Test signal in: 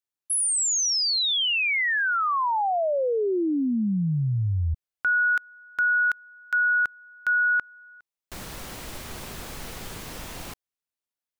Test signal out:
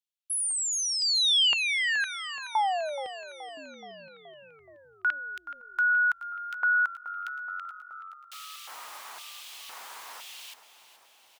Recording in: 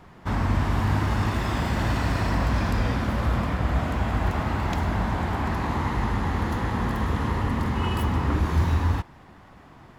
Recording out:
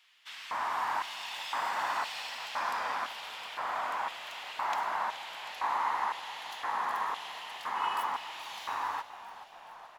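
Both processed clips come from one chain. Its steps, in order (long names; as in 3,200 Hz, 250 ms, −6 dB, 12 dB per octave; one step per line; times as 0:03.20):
auto-filter high-pass square 0.98 Hz 940–3,000 Hz
echo with shifted repeats 425 ms, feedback 65%, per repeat −46 Hz, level −14 dB
level −5.5 dB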